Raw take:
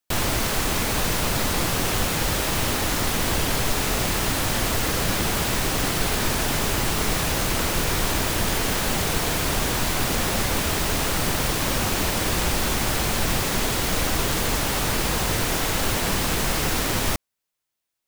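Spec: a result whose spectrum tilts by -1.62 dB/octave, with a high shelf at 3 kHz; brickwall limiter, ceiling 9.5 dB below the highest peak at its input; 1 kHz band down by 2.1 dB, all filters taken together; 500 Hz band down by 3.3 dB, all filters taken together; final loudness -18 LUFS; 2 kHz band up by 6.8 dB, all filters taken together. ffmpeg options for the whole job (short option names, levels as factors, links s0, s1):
-af "equalizer=f=500:t=o:g=-3.5,equalizer=f=1000:t=o:g=-5,equalizer=f=2000:t=o:g=7.5,highshelf=f=3000:g=6.5,volume=1.78,alimiter=limit=0.299:level=0:latency=1"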